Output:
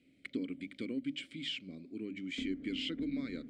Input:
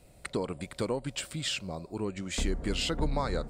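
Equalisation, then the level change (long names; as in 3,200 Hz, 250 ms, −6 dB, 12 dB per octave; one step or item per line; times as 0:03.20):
formant filter i
mains-hum notches 50/100/150/200/250/300 Hz
+6.0 dB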